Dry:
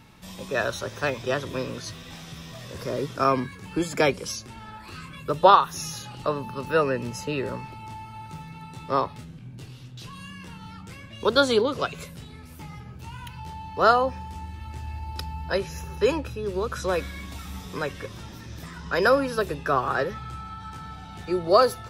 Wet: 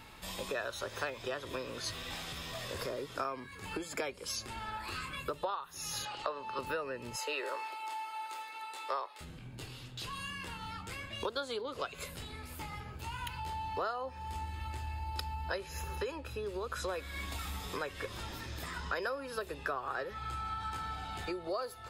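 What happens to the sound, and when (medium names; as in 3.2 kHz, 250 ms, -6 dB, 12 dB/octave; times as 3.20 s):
6.05–6.59 s: three-band isolator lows -13 dB, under 350 Hz, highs -22 dB, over 7.4 kHz
7.16–9.21 s: Bessel high-pass 580 Hz, order 8
whole clip: band-stop 5.8 kHz, Q 7.6; compression 20:1, threshold -34 dBFS; peaking EQ 160 Hz -12 dB 1.6 oct; trim +2.5 dB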